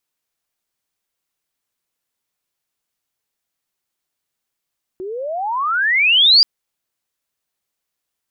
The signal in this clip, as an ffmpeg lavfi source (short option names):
-f lavfi -i "aevalsrc='pow(10,(-25+19*t/1.43)/20)*sin(2*PI*360*1.43/log(4900/360)*(exp(log(4900/360)*t/1.43)-1))':d=1.43:s=44100"